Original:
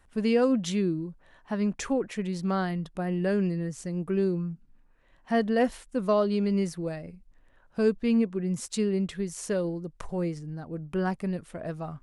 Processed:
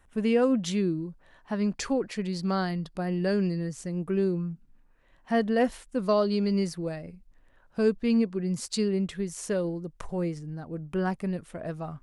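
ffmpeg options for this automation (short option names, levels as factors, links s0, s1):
-af "asetnsamples=n=441:p=0,asendcmd='0.62 equalizer g 2;1.64 equalizer g 10.5;3.73 equalizer g -0.5;5.99 equalizer g 9;6.73 equalizer g 1;8.1 equalizer g 10;8.88 equalizer g -1',equalizer=f=4600:t=o:w=0.26:g=-9.5"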